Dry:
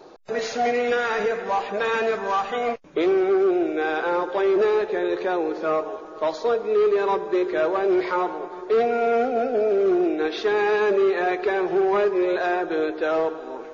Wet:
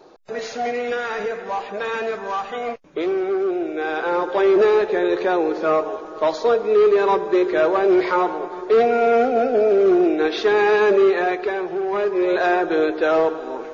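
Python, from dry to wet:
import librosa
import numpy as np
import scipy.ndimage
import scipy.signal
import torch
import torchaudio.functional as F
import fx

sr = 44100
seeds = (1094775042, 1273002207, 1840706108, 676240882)

y = fx.gain(x, sr, db=fx.line((3.64, -2.0), (4.43, 4.5), (11.07, 4.5), (11.79, -4.0), (12.42, 5.0)))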